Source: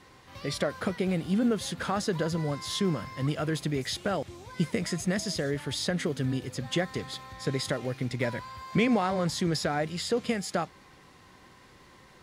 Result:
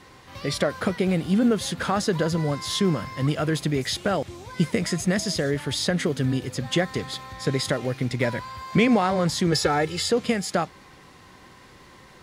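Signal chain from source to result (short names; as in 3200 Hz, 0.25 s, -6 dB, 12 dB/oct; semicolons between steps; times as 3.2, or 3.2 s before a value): 9.52–10.1 comb 2.3 ms, depth 91%; gain +5.5 dB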